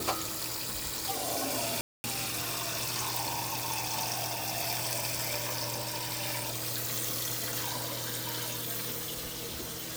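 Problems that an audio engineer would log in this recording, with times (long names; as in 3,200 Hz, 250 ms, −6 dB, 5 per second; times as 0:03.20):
0:01.81–0:02.04: drop-out 230 ms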